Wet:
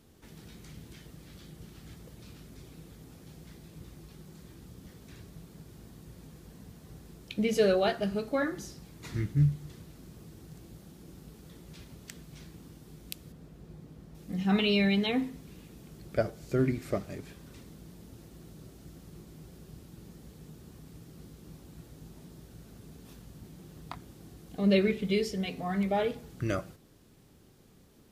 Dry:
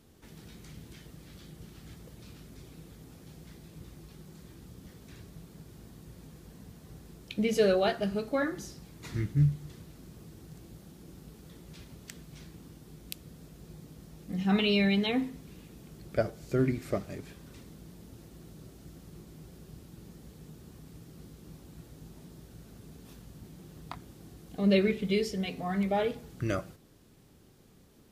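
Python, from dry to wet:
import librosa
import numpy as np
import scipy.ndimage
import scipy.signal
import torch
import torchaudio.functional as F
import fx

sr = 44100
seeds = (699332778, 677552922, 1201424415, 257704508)

y = fx.high_shelf(x, sr, hz=3300.0, db=-10.5, at=(13.32, 14.15))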